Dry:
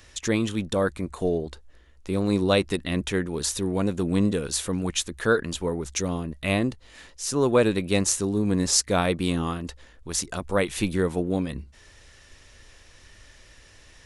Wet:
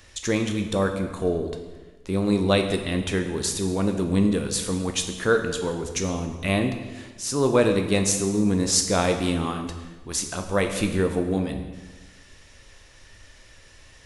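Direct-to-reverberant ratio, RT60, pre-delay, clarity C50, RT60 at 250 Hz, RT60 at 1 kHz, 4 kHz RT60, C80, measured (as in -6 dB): 5.0 dB, 1.3 s, 9 ms, 7.5 dB, 1.4 s, 1.3 s, 1.1 s, 9.0 dB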